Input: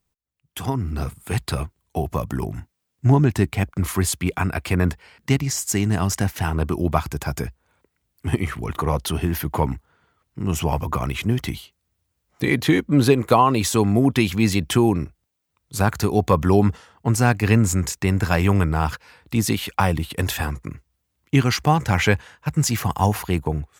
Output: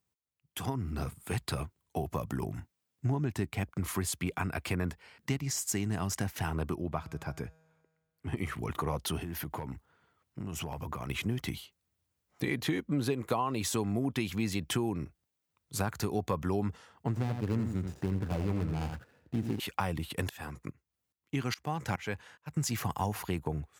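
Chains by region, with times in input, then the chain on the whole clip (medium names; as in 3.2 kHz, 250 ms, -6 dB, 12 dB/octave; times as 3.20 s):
6.75–8.37 s: treble shelf 5 kHz -11.5 dB + feedback comb 160 Hz, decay 1.6 s, mix 40%
9.20–11.10 s: hard clipper -9 dBFS + compression 10:1, threshold -26 dBFS
17.08–19.60 s: median filter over 41 samples + delay 84 ms -7.5 dB
20.29–22.57 s: bass shelf 72 Hz -8.5 dB + tremolo saw up 2.4 Hz, depth 95%
whole clip: high-pass 79 Hz; compression 3:1, threshold -23 dBFS; trim -6.5 dB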